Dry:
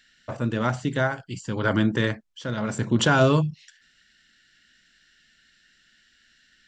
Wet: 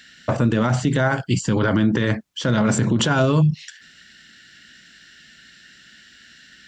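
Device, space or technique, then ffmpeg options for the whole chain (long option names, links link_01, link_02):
mastering chain: -filter_complex "[0:a]highpass=59,equalizer=frequency=180:width_type=o:width=1.9:gain=3.5,acompressor=threshold=-20dB:ratio=6,alimiter=level_in=21dB:limit=-1dB:release=50:level=0:latency=1,asplit=3[link_01][link_02][link_03];[link_01]afade=type=out:start_time=1.59:duration=0.02[link_04];[link_02]lowpass=frequency=6600:width=0.5412,lowpass=frequency=6600:width=1.3066,afade=type=in:start_time=1.59:duration=0.02,afade=type=out:start_time=2.04:duration=0.02[link_05];[link_03]afade=type=in:start_time=2.04:duration=0.02[link_06];[link_04][link_05][link_06]amix=inputs=3:normalize=0,volume=-8.5dB"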